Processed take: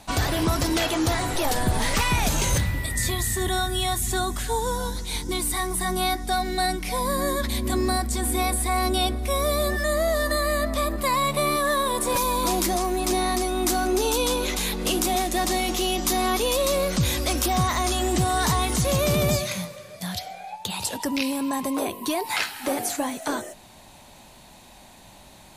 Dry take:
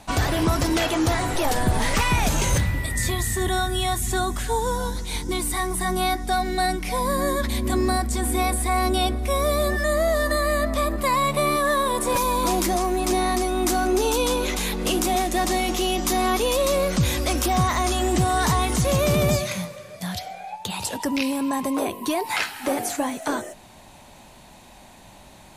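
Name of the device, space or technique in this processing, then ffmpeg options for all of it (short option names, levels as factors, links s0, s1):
presence and air boost: -af "equalizer=f=4100:t=o:w=0.77:g=3,highshelf=f=9200:g=5.5,volume=0.794"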